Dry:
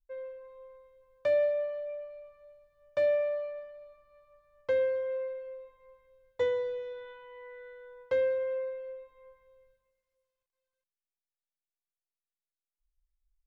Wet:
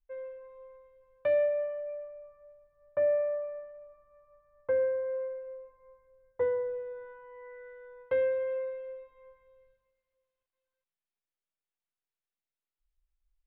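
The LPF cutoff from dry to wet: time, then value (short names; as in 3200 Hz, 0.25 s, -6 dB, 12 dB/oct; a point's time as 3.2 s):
LPF 24 dB/oct
1.32 s 2900 Hz
2.22 s 1700 Hz
7.21 s 1700 Hz
7.92 s 2600 Hz
8.68 s 3600 Hz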